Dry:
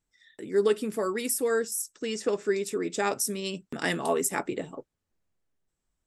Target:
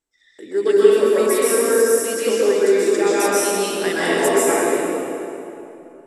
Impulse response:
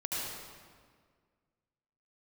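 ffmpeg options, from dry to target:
-filter_complex "[0:a]lowshelf=f=230:t=q:w=1.5:g=-9[a];[1:a]atrim=start_sample=2205,asetrate=24696,aresample=44100[b];[a][b]afir=irnorm=-1:irlink=0,volume=1dB"

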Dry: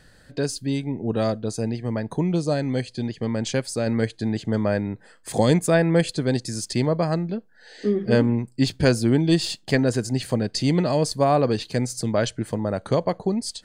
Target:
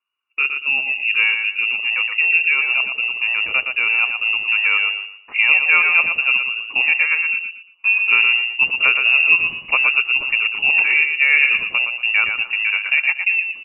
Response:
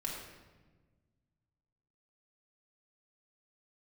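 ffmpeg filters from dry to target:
-filter_complex "[0:a]agate=range=-35dB:threshold=-39dB:ratio=16:detection=peak,asplit=2[a][b];[b]alimiter=limit=-13dB:level=0:latency=1:release=366,volume=-2dB[c];[a][c]amix=inputs=2:normalize=0,aecho=1:1:117|234|351|468:0.501|0.14|0.0393|0.011,lowpass=f=2.5k:t=q:w=0.5098,lowpass=f=2.5k:t=q:w=0.6013,lowpass=f=2.5k:t=q:w=0.9,lowpass=f=2.5k:t=q:w=2.563,afreqshift=-2900"

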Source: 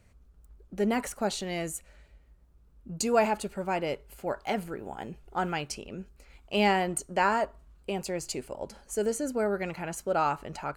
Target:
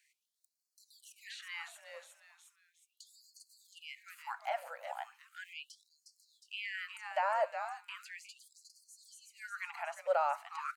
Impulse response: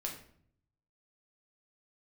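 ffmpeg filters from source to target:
-filter_complex "[0:a]asplit=5[a][b][c][d][e];[b]adelay=359,afreqshift=-150,volume=-12.5dB[f];[c]adelay=718,afreqshift=-300,volume=-21.6dB[g];[d]adelay=1077,afreqshift=-450,volume=-30.7dB[h];[e]adelay=1436,afreqshift=-600,volume=-39.9dB[i];[a][f][g][h][i]amix=inputs=5:normalize=0,acrossover=split=650[j][k];[k]alimiter=limit=-23.5dB:level=0:latency=1:release=93[l];[j][l]amix=inputs=2:normalize=0,acrossover=split=2900[m][n];[n]acompressor=threshold=-55dB:ratio=4:attack=1:release=60[o];[m][o]amix=inputs=2:normalize=0,afftfilt=real='re*gte(b*sr/1024,500*pow(4200/500,0.5+0.5*sin(2*PI*0.37*pts/sr)))':imag='im*gte(b*sr/1024,500*pow(4200/500,0.5+0.5*sin(2*PI*0.37*pts/sr)))':win_size=1024:overlap=0.75,volume=-1.5dB"

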